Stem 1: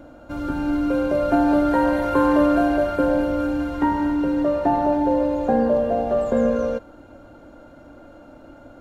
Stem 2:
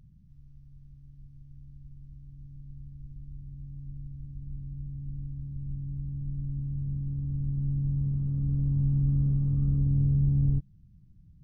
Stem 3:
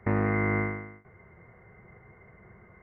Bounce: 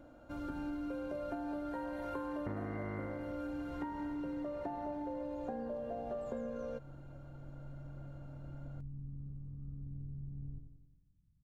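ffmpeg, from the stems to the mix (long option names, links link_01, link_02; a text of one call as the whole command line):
ffmpeg -i stem1.wav -i stem2.wav -i stem3.wav -filter_complex "[0:a]volume=-13dB[link_01];[1:a]volume=-18.5dB,asplit=2[link_02][link_03];[link_03]volume=-7.5dB[link_04];[2:a]lowpass=1500,adelay=2400,volume=0.5dB[link_05];[link_04]aecho=0:1:89|178|267|356|445|534|623|712|801:1|0.57|0.325|0.185|0.106|0.0602|0.0343|0.0195|0.0111[link_06];[link_01][link_02][link_05][link_06]amix=inputs=4:normalize=0,acompressor=threshold=-37dB:ratio=10" out.wav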